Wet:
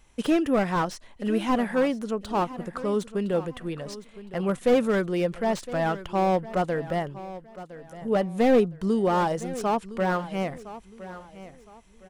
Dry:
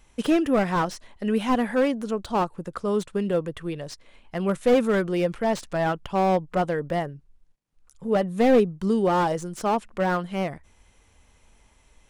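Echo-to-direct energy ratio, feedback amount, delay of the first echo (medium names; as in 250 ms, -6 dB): -15.0 dB, 31%, 1012 ms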